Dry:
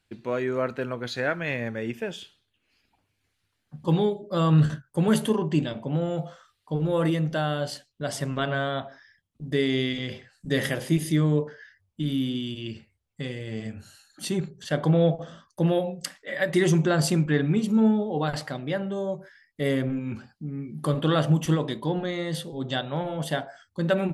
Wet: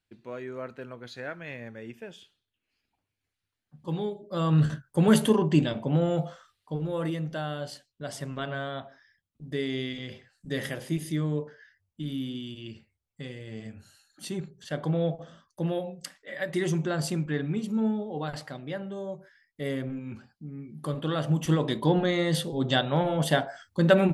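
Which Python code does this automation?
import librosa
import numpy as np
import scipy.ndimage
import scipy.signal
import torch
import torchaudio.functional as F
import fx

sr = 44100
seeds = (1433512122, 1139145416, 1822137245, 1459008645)

y = fx.gain(x, sr, db=fx.line((3.76, -10.5), (5.12, 2.0), (6.21, 2.0), (6.91, -6.5), (21.18, -6.5), (21.84, 4.0)))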